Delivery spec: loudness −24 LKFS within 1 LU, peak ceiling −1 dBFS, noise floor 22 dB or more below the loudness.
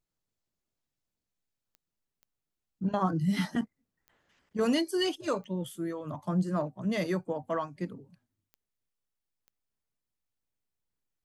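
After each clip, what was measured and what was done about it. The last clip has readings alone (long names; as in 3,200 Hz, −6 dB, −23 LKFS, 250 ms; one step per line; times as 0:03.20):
number of clicks 6; integrated loudness −32.0 LKFS; sample peak −15.5 dBFS; target loudness −24.0 LKFS
→ click removal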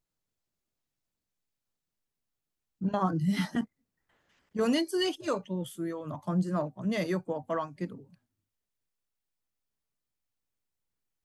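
number of clicks 0; integrated loudness −32.0 LKFS; sample peak −15.5 dBFS; target loudness −24.0 LKFS
→ level +8 dB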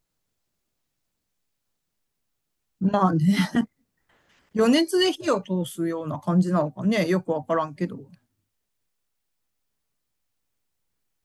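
integrated loudness −24.0 LKFS; sample peak −7.5 dBFS; background noise floor −79 dBFS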